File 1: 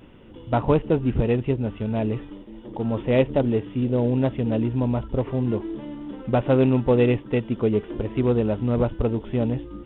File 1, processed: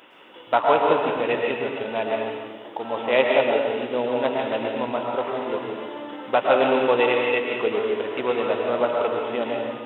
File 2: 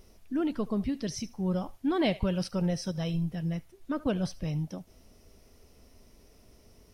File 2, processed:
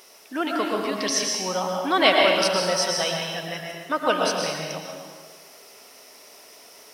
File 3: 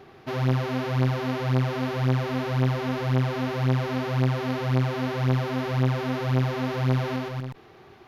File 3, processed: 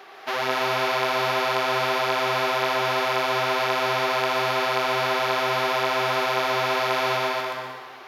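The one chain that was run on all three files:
HPF 760 Hz 12 dB/oct; plate-style reverb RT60 1.5 s, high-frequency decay 0.8×, pre-delay 0.1 s, DRR -0.5 dB; match loudness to -23 LUFS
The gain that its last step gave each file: +7.5, +15.0, +9.0 dB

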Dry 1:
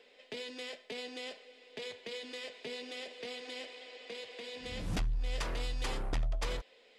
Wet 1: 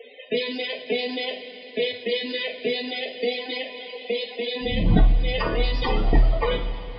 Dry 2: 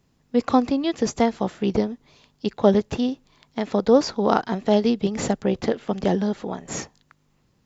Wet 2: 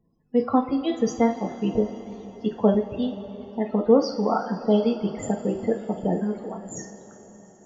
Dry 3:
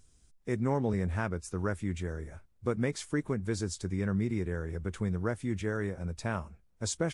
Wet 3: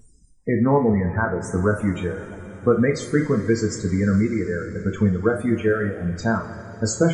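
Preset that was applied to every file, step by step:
loudest bins only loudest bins 32; reverb removal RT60 1.7 s; two-slope reverb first 0.32 s, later 5 s, from -18 dB, DRR 1.5 dB; normalise peaks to -6 dBFS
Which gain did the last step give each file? +16.5, -4.0, +11.0 dB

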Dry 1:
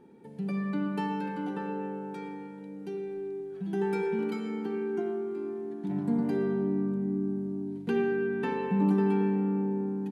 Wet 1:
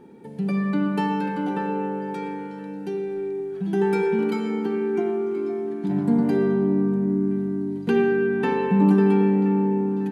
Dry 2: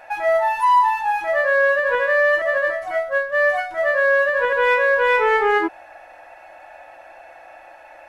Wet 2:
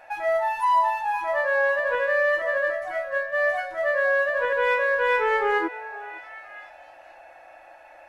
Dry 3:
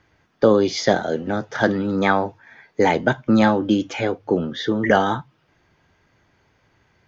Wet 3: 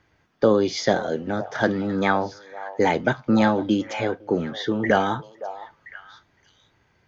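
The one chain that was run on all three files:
delay with a stepping band-pass 0.511 s, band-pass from 720 Hz, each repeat 1.4 oct, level -11 dB; match loudness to -23 LUFS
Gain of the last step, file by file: +8.0, -5.5, -3.0 dB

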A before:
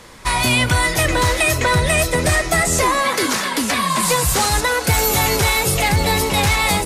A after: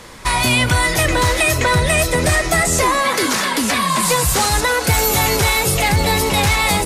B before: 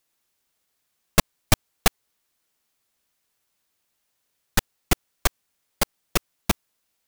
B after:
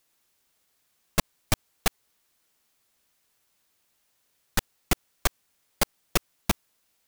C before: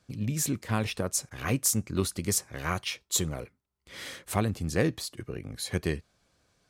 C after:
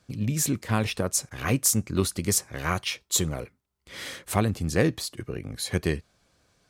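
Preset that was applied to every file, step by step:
limiter -12.5 dBFS; normalise peaks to -9 dBFS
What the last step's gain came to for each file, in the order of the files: +3.5, +3.5, +3.5 dB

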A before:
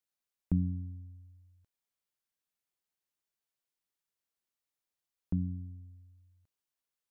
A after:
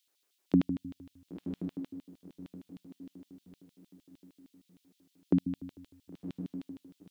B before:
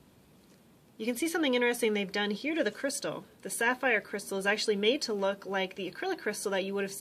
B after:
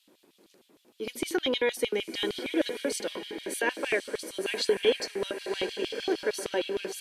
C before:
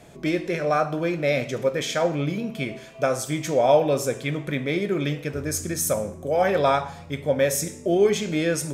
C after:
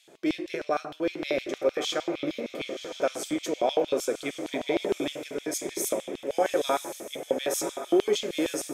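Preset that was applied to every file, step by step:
diffused feedback echo 1.042 s, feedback 40%, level -8.5 dB; LFO high-pass square 6.5 Hz 340–3300 Hz; normalise peaks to -12 dBFS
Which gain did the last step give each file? +12.5, -1.5, -6.0 dB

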